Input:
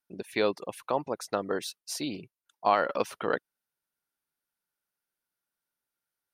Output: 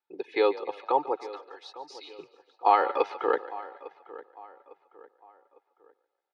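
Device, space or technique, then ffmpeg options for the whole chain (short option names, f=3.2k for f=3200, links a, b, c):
frequency-shifting delay pedal into a guitar cabinet: -filter_complex "[0:a]asettb=1/sr,asplit=3[a][b][c];[a]atrim=end=1.194[d];[b]atrim=start=1.19:end=2.19,asetpts=PTS-STARTPTS,afade=t=in:d=0.004:c=qsin,afade=t=out:st=0.996:d=0.004:c=qsin,aderivative[e];[c]atrim=start=2.186[f];[d][e]acrossfade=d=0.004:c1=hsin:c2=qsin[g];[g][f]acrossfade=d=0.004:c1=qsin:c2=hsin,highpass=300,asplit=6[h][i][j][k][l][m];[i]adelay=144,afreqshift=46,volume=-17dB[n];[j]adelay=288,afreqshift=92,volume=-22.5dB[o];[k]adelay=432,afreqshift=138,volume=-28dB[p];[l]adelay=576,afreqshift=184,volume=-33.5dB[q];[m]adelay=720,afreqshift=230,volume=-39.1dB[r];[h][n][o][p][q][r]amix=inputs=6:normalize=0,highpass=87,equalizer=f=110:t=q:w=4:g=-5,equalizer=f=920:t=q:w=4:g=5,equalizer=f=1.6k:t=q:w=4:g=-4,equalizer=f=2.9k:t=q:w=4:g=-4,lowpass=f=3.8k:w=0.5412,lowpass=f=3.8k:w=1.3066,aecho=1:1:2.4:0.99,asplit=2[s][t];[t]adelay=853,lowpass=f=2.4k:p=1,volume=-17.5dB,asplit=2[u][v];[v]adelay=853,lowpass=f=2.4k:p=1,volume=0.4,asplit=2[w][x];[x]adelay=853,lowpass=f=2.4k:p=1,volume=0.4[y];[s][u][w][y]amix=inputs=4:normalize=0"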